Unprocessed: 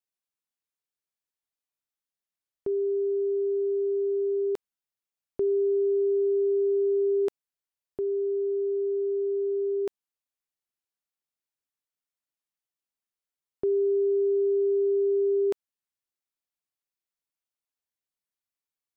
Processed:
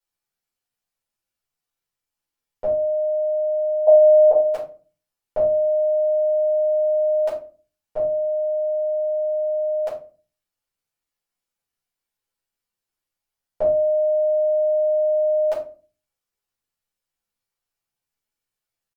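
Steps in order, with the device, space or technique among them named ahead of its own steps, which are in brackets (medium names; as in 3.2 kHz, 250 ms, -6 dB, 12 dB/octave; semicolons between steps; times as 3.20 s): 3.88–4.32 s: high-order bell 550 Hz +13 dB 1.1 oct; chipmunk voice (pitch shift +7.5 st); simulated room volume 190 m³, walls furnished, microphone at 4.7 m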